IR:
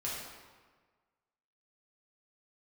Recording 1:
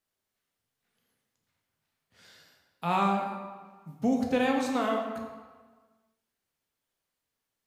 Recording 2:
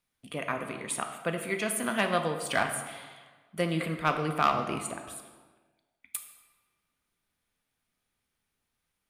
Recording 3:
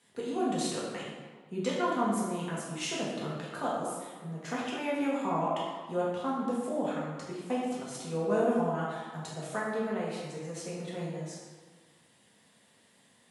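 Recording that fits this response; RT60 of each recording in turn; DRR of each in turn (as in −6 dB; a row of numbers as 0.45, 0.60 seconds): 3; 1.5, 1.5, 1.5 seconds; 0.5, 4.5, −7.0 decibels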